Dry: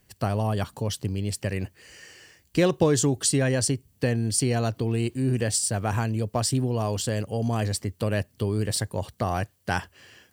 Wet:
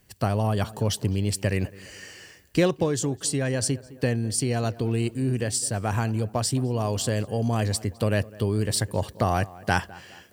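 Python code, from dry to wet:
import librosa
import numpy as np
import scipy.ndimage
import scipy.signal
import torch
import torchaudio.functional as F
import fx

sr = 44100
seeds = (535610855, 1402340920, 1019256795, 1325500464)

y = fx.echo_tape(x, sr, ms=208, feedback_pct=49, wet_db=-18, lp_hz=1800.0, drive_db=13.0, wow_cents=26)
y = fx.rider(y, sr, range_db=10, speed_s=0.5)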